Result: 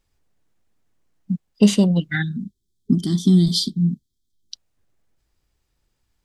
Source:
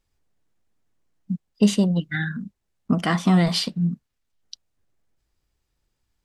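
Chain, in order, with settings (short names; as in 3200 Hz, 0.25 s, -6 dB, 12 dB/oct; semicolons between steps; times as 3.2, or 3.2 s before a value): spectral gain 2.22–4.51, 410–3100 Hz -28 dB; gain +3.5 dB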